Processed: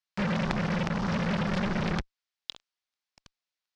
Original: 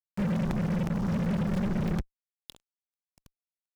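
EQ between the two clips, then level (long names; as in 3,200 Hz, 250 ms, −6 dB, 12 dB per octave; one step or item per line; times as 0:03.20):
low-pass with resonance 5,000 Hz, resonance Q 1.5
tilt shelving filter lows −9.5 dB, about 810 Hz
high-shelf EQ 2,200 Hz −11.5 dB
+7.0 dB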